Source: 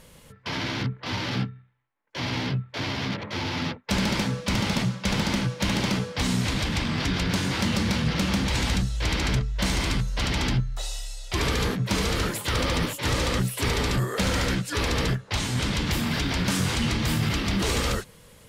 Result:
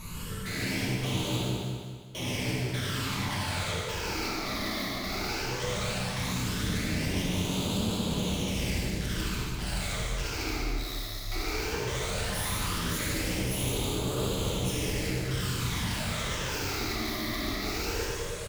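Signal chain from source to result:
in parallel at −3 dB: compressor whose output falls as the input rises −29 dBFS
on the sum: brickwall limiter −17.5 dBFS, peak gain reduction 6 dB
gain into a clipping stage and back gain 34.5 dB
all-pass phaser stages 12, 0.16 Hz, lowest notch 150–1,900 Hz
soft clipping −38 dBFS, distortion −15 dB
on a send: repeating echo 201 ms, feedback 44%, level −5.5 dB
on the sum: reverb whose tail is shaped and stops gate 190 ms flat, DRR −5 dB
level +3.5 dB

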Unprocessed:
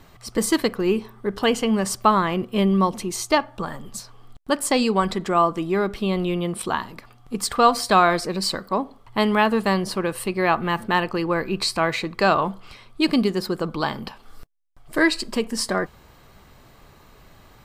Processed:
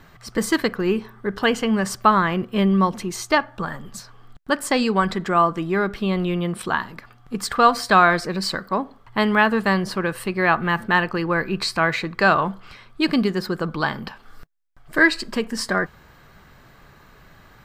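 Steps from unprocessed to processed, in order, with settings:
graphic EQ with 15 bands 160 Hz +4 dB, 1,600 Hz +8 dB, 10,000 Hz −5 dB
level −1 dB

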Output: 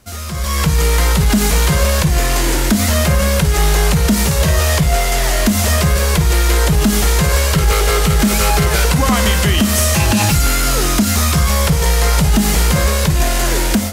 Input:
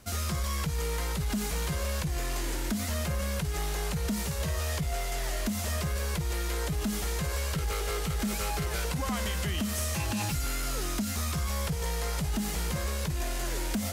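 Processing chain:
automatic gain control gain up to 13.5 dB
on a send: convolution reverb RT60 0.40 s, pre-delay 22 ms, DRR 11.5 dB
on the sum: level +4 dB

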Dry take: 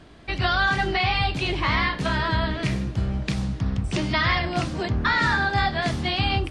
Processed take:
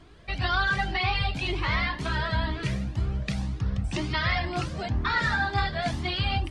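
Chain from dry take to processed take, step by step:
flanger whose copies keep moving one way rising 2 Hz

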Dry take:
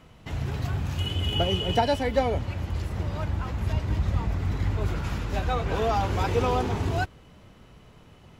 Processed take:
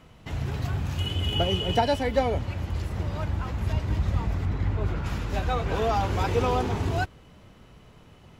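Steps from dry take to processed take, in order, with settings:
0:04.45–0:05.06: high-shelf EQ 4,500 Hz −11.5 dB

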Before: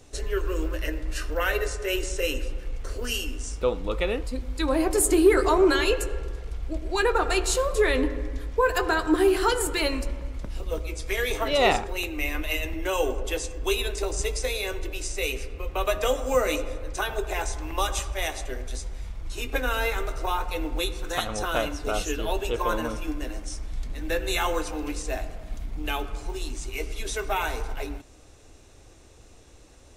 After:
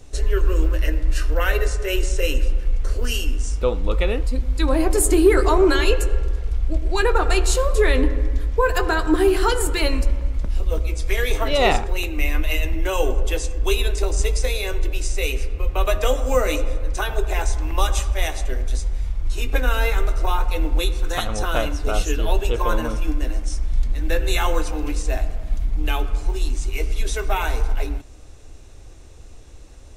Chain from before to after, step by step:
low-shelf EQ 83 Hz +11.5 dB
level +2.5 dB

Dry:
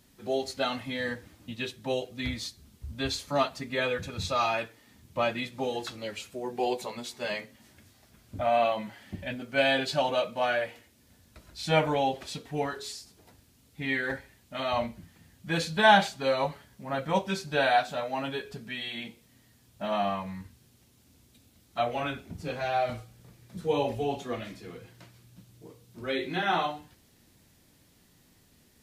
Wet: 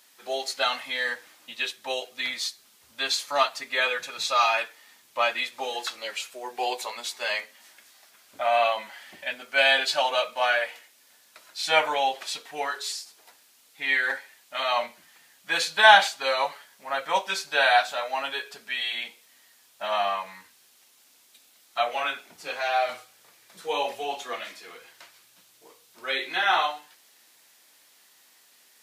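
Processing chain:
high-pass filter 860 Hz 12 dB per octave
level +7.5 dB

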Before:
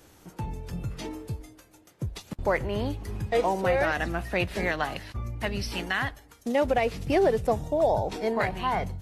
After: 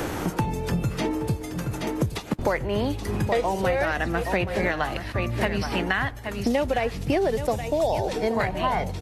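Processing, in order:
single-tap delay 823 ms −12.5 dB
multiband upward and downward compressor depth 100%
level +1.5 dB

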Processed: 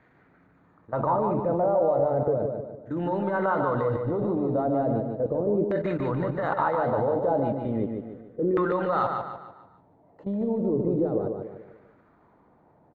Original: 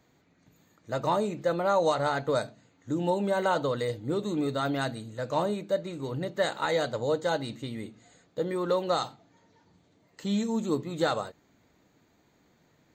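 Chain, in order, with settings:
gain on a spectral selection 0:07.45–0:08.62, 990–3,700 Hz +8 dB
in parallel at −2.5 dB: downward compressor 8 to 1, threshold −35 dBFS, peak gain reduction 14.5 dB
on the sum: transient designer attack −8 dB, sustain +5 dB
output level in coarse steps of 17 dB
auto-filter low-pass saw down 0.35 Hz 360–1,800 Hz
on a send: repeating echo 147 ms, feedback 42%, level −5 dB
on the sum: level +5.5 dB

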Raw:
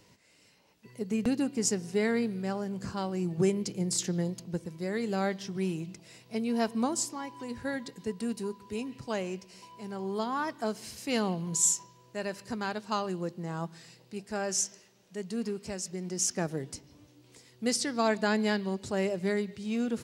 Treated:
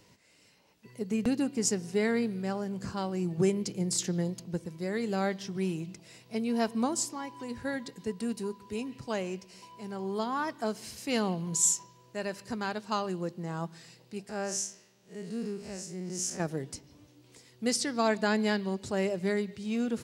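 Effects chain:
0:14.29–0:16.40: spectrum smeared in time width 101 ms

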